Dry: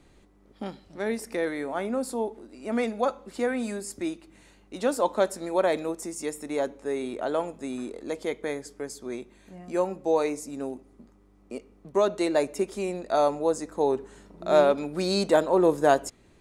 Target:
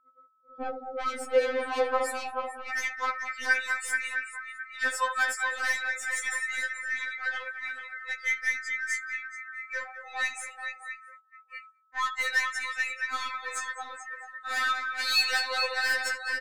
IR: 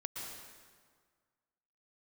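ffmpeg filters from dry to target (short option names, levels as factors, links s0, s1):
-af "aecho=1:1:662|1324|1986|2648|3310:0.251|0.118|0.0555|0.0261|0.0123,aeval=exprs='0.501*(cos(1*acos(clip(val(0)/0.501,-1,1)))-cos(1*PI/2))+0.158*(cos(2*acos(clip(val(0)/0.501,-1,1)))-cos(2*PI/2))+0.0447*(cos(4*acos(clip(val(0)/0.501,-1,1)))-cos(4*PI/2))':c=same,asetnsamples=n=441:p=0,asendcmd='1.61 highpass f 910;2.61 highpass f 1800',highpass=f=420:t=q:w=4.9,acontrast=74,aecho=1:1:66|74|210|223|434:0.126|0.224|0.266|0.15|0.398,afftdn=nr=31:nf=-35,aeval=exprs='0.668*(cos(1*acos(clip(val(0)/0.668,-1,1)))-cos(1*PI/2))+0.0119*(cos(2*acos(clip(val(0)/0.668,-1,1)))-cos(2*PI/2))+0.0211*(cos(6*acos(clip(val(0)/0.668,-1,1)))-cos(6*PI/2))':c=same,aeval=exprs='val(0)+0.00178*sin(2*PI*1300*n/s)':c=same,asoftclip=type=tanh:threshold=0.0944,agate=range=0.126:threshold=0.00398:ratio=16:detection=peak,afftfilt=real='re*3.46*eq(mod(b,12),0)':imag='im*3.46*eq(mod(b,12),0)':win_size=2048:overlap=0.75"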